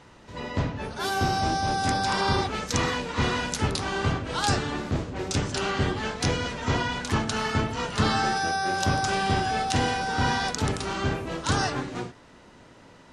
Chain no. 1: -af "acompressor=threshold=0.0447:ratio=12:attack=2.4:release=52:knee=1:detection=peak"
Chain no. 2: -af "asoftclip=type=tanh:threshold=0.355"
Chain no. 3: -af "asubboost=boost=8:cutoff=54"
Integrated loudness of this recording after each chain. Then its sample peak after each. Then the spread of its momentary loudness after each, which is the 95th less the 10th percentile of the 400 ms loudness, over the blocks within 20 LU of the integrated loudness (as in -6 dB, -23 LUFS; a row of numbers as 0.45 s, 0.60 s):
-31.5 LUFS, -27.0 LUFS, -26.0 LUFS; -11.0 dBFS, -10.0 dBFS, -6.5 dBFS; 3 LU, 5 LU, 5 LU